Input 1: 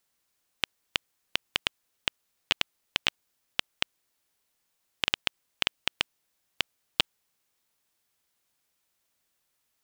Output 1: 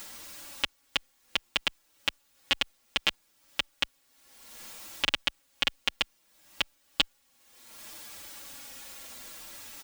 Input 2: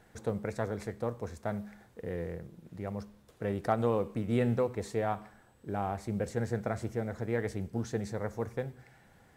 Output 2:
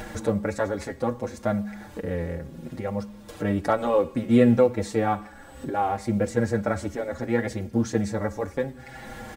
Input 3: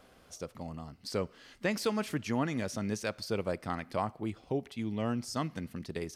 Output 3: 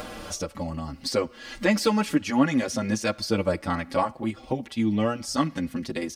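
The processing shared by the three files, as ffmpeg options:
ffmpeg -i in.wav -filter_complex "[0:a]acompressor=mode=upward:threshold=-34dB:ratio=2.5,equalizer=frequency=12000:width_type=o:width=0.32:gain=-5,aecho=1:1:3.6:0.47,alimiter=level_in=11dB:limit=-1dB:release=50:level=0:latency=1,asplit=2[link_01][link_02];[link_02]adelay=6.1,afreqshift=-0.64[link_03];[link_01][link_03]amix=inputs=2:normalize=1" out.wav

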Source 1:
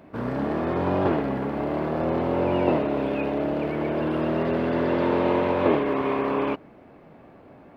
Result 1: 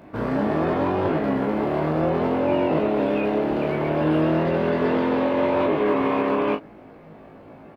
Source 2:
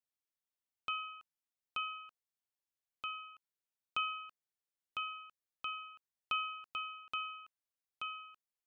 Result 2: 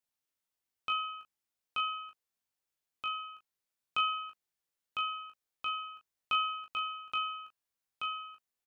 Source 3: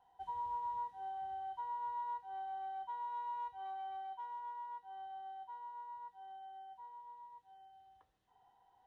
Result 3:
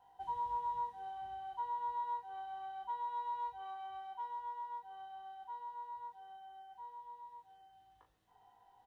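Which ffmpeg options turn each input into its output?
ffmpeg -i in.wav -af "alimiter=limit=-16.5dB:level=0:latency=1:release=63,aecho=1:1:19|38:0.562|0.398,volume=2.5dB" out.wav

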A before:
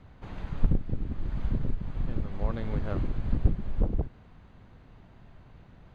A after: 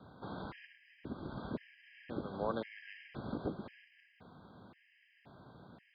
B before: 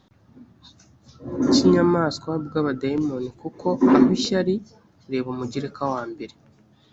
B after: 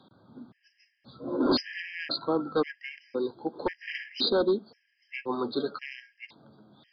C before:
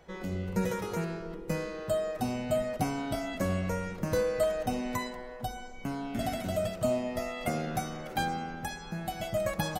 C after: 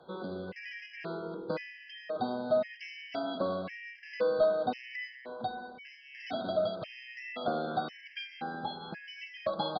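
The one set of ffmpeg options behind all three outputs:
ffmpeg -i in.wav -filter_complex "[0:a]highpass=180,acrossover=split=290|940[link_01][link_02][link_03];[link_01]acompressor=threshold=-46dB:ratio=6[link_04];[link_04][link_02][link_03]amix=inputs=3:normalize=0,asoftclip=type=hard:threshold=-21.5dB,aresample=11025,aresample=44100,afftfilt=real='re*gt(sin(2*PI*0.95*pts/sr)*(1-2*mod(floor(b*sr/1024/1600),2)),0)':imag='im*gt(sin(2*PI*0.95*pts/sr)*(1-2*mod(floor(b*sr/1024/1600),2)),0)':win_size=1024:overlap=0.75,volume=2.5dB" out.wav

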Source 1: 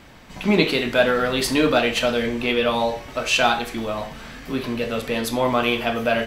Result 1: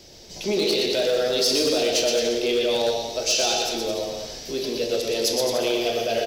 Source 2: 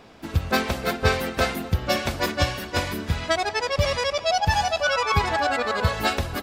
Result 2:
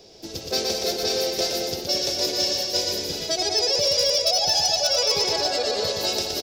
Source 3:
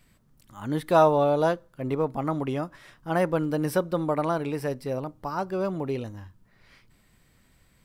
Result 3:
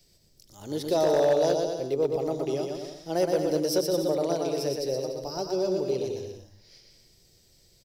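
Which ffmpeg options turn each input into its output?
ffmpeg -i in.wav -filter_complex "[0:a]acrossover=split=180|5600[link_01][link_02][link_03];[link_01]acompressor=threshold=-42dB:ratio=6[link_04];[link_04][link_02][link_03]amix=inputs=3:normalize=0,firequalizer=gain_entry='entry(120,0);entry(260,-6);entry(360,7);entry(640,2);entry(1100,-13);entry(5300,14);entry(8300,-4)':delay=0.05:min_phase=1,alimiter=limit=-12dB:level=0:latency=1:release=23,bandreject=frequency=60:width_type=h:width=6,bandreject=frequency=120:width_type=h:width=6,aecho=1:1:120|216|292.8|354.2|403.4:0.631|0.398|0.251|0.158|0.1,volume=12dB,asoftclip=hard,volume=-12dB,highshelf=frequency=6000:gain=10.5,acontrast=23,volume=-8.5dB" out.wav

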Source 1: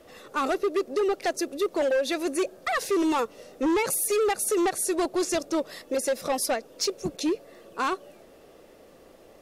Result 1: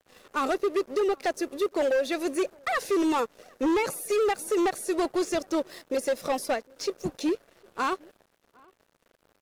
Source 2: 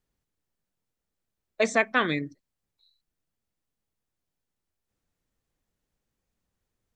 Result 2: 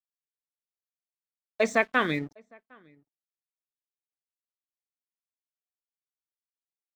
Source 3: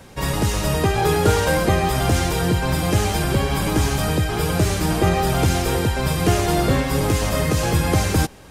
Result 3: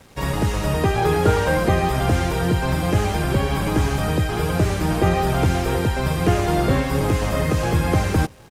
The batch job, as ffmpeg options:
ffmpeg -i in.wav -filter_complex "[0:a]aeval=exprs='sgn(val(0))*max(abs(val(0))-0.00398,0)':channel_layout=same,acrossover=split=2800[link_01][link_02];[link_02]acompressor=threshold=-35dB:ratio=4:attack=1:release=60[link_03];[link_01][link_03]amix=inputs=2:normalize=0,asplit=2[link_04][link_05];[link_05]adelay=758,volume=-28dB,highshelf=frequency=4000:gain=-17.1[link_06];[link_04][link_06]amix=inputs=2:normalize=0" out.wav

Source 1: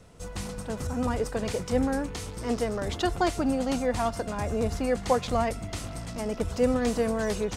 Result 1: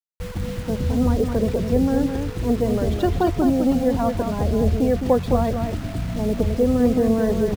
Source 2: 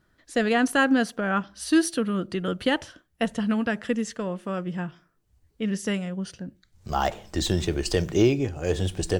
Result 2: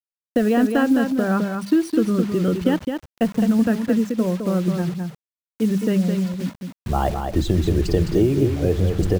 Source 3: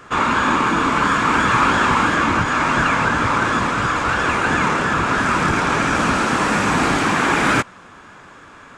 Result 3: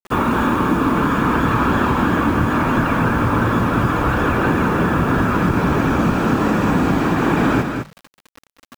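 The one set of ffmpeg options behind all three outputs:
ffmpeg -i in.wav -af "bandreject=frequency=50:width_type=h:width=6,bandreject=frequency=100:width_type=h:width=6,bandreject=frequency=150:width_type=h:width=6,bandreject=frequency=200:width_type=h:width=6,afftfilt=real='re*gte(hypot(re,im),0.0282)':imag='im*gte(hypot(re,im),0.0282)':win_size=1024:overlap=0.75,tiltshelf=frequency=670:gain=7.5,bandreject=frequency=2100:width=15,acompressor=threshold=-19dB:ratio=5,acrusher=bits=6:mix=0:aa=0.000001,aecho=1:1:211:0.501,adynamicequalizer=threshold=0.00316:dfrequency=6200:dqfactor=0.7:tfrequency=6200:tqfactor=0.7:attack=5:release=100:ratio=0.375:range=2.5:mode=cutabove:tftype=highshelf,volume=4.5dB" out.wav

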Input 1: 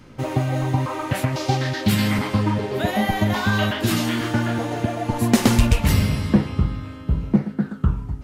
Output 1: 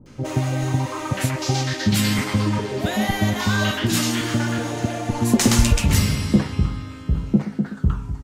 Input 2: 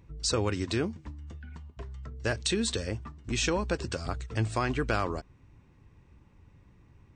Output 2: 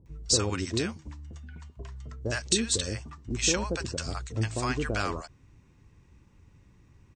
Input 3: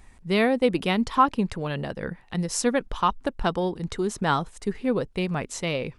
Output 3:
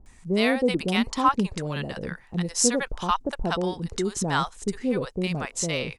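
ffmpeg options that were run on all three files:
ffmpeg -i in.wav -filter_complex "[0:a]equalizer=frequency=6800:width_type=o:width=1.1:gain=8,acrossover=split=710[link_01][link_02];[link_02]adelay=60[link_03];[link_01][link_03]amix=inputs=2:normalize=0" out.wav

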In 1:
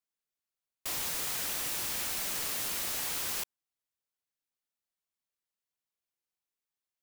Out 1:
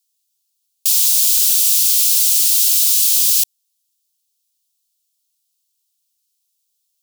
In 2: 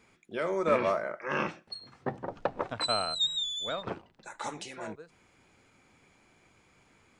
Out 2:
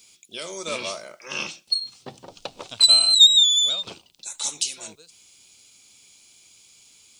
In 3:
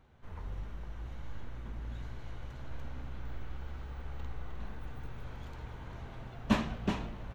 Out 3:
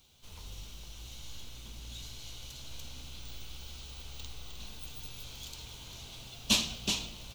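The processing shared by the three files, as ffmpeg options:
ffmpeg -i in.wav -af "aexciter=amount=13:drive=7.3:freq=2800,volume=-6dB" out.wav

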